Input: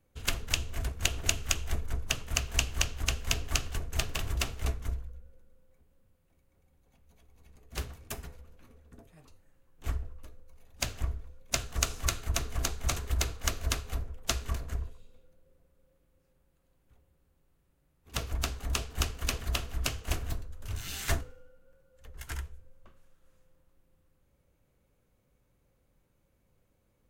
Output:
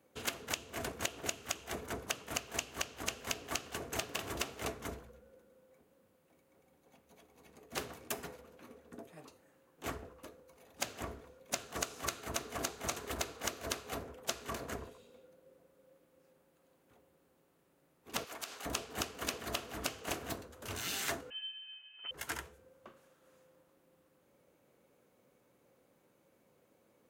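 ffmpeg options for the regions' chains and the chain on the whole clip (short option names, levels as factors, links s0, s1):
-filter_complex "[0:a]asettb=1/sr,asplit=3[s0][s1][s2];[s0]atrim=end=18.244[s3];[s1]atrim=start=18.24:end=18.66,asetpts=PTS-STARTPTS,afade=t=in:d=0.004:c=qsin,afade=t=out:st=0.416:d=0.004:c=qsin,highpass=f=1200:p=1,acompressor=threshold=0.00891:ratio=12:attack=3.2:release=140:knee=1:detection=peak[s4];[s2]atrim=start=18.656[s5];[s3][s4]acrossfade=d=0.004:c1=hsin:c2=qsin[s6];[s6][s5]acrossfade=d=0.004:c1=qsin:c2=hsin,asettb=1/sr,asplit=3[s7][s8][s9];[s7]atrim=end=21.304[s10];[s8]atrim=start=21.3:end=22.11,asetpts=PTS-STARTPTS,afade=t=in:d=0.004:c=qsin,afade=t=out:st=0.806:d=0.004:c=qsin,aecho=1:1:7.1:0.58,atrim=end_sample=35721,lowpass=f=2600:t=q:w=0.5098,lowpass=f=2600:t=q:w=0.6013,lowpass=f=2600:t=q:w=0.9,lowpass=f=2600:t=q:w=2.563,afreqshift=-3100[s11];[s9]atrim=start=22.106[s12];[s10][s11]acrossfade=d=0.004:c1=hsin:c2=qsin[s13];[s13][s12]acrossfade=d=0.004:c1=qsin:c2=hsin,highpass=280,tiltshelf=f=1100:g=3,acompressor=threshold=0.00891:ratio=6,volume=2.11"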